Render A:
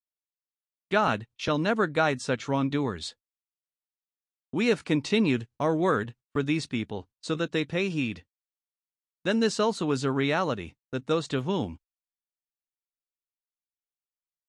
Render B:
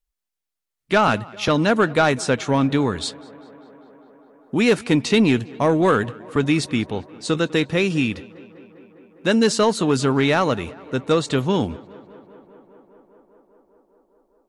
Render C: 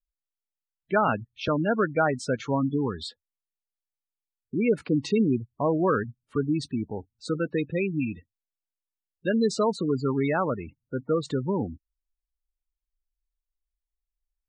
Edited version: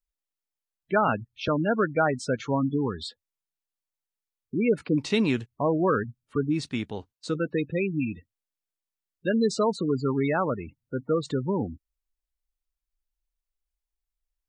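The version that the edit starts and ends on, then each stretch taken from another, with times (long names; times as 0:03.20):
C
0:04.98–0:05.46: punch in from A
0:06.58–0:07.29: punch in from A, crossfade 0.16 s
not used: B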